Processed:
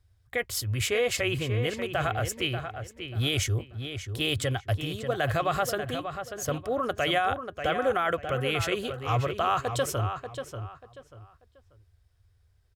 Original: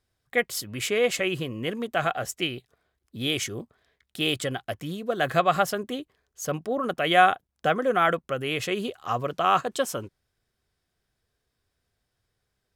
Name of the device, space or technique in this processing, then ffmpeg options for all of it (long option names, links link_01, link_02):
car stereo with a boomy subwoofer: -filter_complex "[0:a]lowshelf=frequency=130:width_type=q:width=3:gain=12.5,alimiter=limit=-16.5dB:level=0:latency=1:release=14,asplit=2[link_01][link_02];[link_02]adelay=588,lowpass=frequency=3700:poles=1,volume=-8dB,asplit=2[link_03][link_04];[link_04]adelay=588,lowpass=frequency=3700:poles=1,volume=0.27,asplit=2[link_05][link_06];[link_06]adelay=588,lowpass=frequency=3700:poles=1,volume=0.27[link_07];[link_01][link_03][link_05][link_07]amix=inputs=4:normalize=0"